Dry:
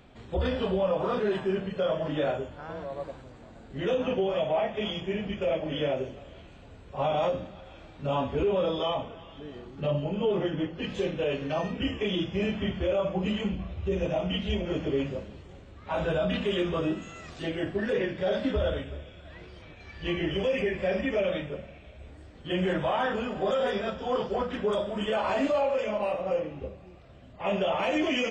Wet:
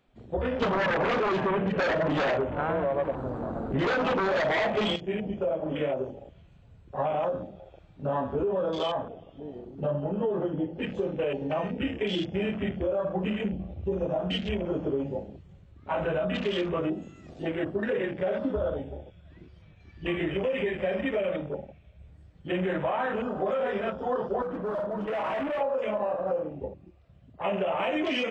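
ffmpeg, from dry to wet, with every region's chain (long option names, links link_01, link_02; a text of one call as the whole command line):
ffmpeg -i in.wav -filter_complex "[0:a]asettb=1/sr,asplit=3[link_01][link_02][link_03];[link_01]atrim=end=0.624[link_04];[link_02]atrim=start=0.62:end=4.96,asetpts=PTS-STARTPTS,afade=type=in:duration=0.004:curve=qsin,afade=type=out:start_time=4.336:duration=0.004:curve=qsin,highshelf=frequency=3500:gain=-10.5,aeval=exprs='0.15*sin(PI/2*3.55*val(0)/0.15)':channel_layout=same[link_05];[link_03]atrim=start=4.956[link_06];[link_04][link_05]acrossfade=duration=0.004:curve1=hsin:curve2=qsin[link_07];[link_07][link_06]acrossfade=duration=0.004:curve1=qsin:curve2=hsin,asettb=1/sr,asplit=3[link_08][link_09][link_10];[link_08]atrim=end=24.424[link_11];[link_09]atrim=start=24.42:end=25.61,asetpts=PTS-STARTPTS,afade=type=in:duration=0.004:curve=qsin,afade=type=out:start_time=1.186:duration=0.004:curve=qsin,lowpass=2200,aecho=1:1:6.3:0.52,atrim=end_sample=52479,asoftclip=type=hard:threshold=-31dB[link_12];[link_10]atrim=start=25.606[link_13];[link_11][link_12]acrossfade=duration=0.004:curve1=hsin:curve2=qsin[link_14];[link_14][link_13]acrossfade=duration=0.004:curve1=qsin:curve2=hsin,afwtdn=0.0126,lowshelf=frequency=100:gain=-10,acompressor=threshold=-28dB:ratio=6,volume=3.5dB" out.wav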